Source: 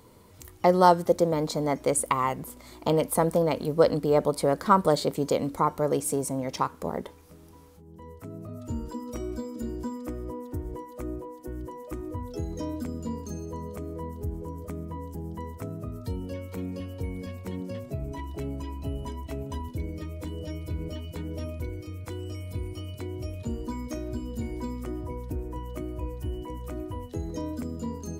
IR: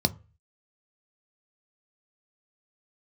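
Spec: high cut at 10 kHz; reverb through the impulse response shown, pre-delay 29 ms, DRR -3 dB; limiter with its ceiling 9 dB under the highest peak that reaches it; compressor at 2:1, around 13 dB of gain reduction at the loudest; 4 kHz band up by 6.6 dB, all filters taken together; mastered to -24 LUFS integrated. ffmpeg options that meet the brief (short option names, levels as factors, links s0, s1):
-filter_complex "[0:a]lowpass=10000,equalizer=f=4000:t=o:g=8,acompressor=threshold=0.0126:ratio=2,alimiter=level_in=1.19:limit=0.0631:level=0:latency=1,volume=0.841,asplit=2[s0][s1];[1:a]atrim=start_sample=2205,adelay=29[s2];[s1][s2]afir=irnorm=-1:irlink=0,volume=0.473[s3];[s0][s3]amix=inputs=2:normalize=0,volume=1.68"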